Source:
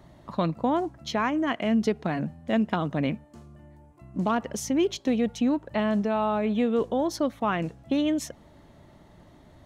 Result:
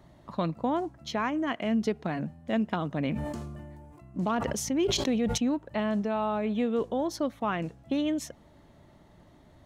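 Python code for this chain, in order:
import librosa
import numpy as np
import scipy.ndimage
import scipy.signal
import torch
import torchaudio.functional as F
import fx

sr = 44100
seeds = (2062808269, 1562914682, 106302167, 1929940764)

y = fx.sustainer(x, sr, db_per_s=26.0, at=(3.02, 5.38))
y = y * 10.0 ** (-3.5 / 20.0)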